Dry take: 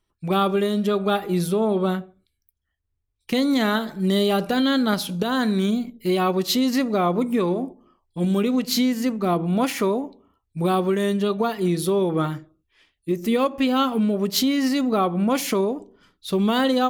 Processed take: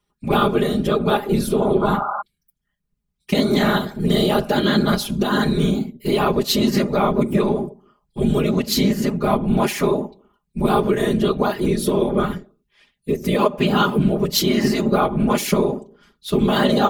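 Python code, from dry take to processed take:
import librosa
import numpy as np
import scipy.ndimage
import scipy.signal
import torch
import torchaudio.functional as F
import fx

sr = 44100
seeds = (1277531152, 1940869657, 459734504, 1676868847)

y = fx.spec_paint(x, sr, seeds[0], shape='noise', start_s=1.81, length_s=0.41, low_hz=680.0, high_hz=1400.0, level_db=-27.0)
y = fx.whisperise(y, sr, seeds[1])
y = y + 0.72 * np.pad(y, (int(4.9 * sr / 1000.0), 0))[:len(y)]
y = y * 10.0 ** (1.0 / 20.0)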